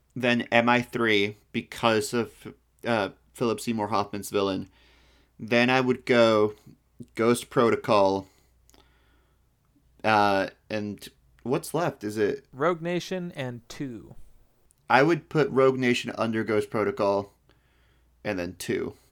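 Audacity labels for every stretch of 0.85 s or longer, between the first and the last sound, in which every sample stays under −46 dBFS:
8.800000	10.000000	silence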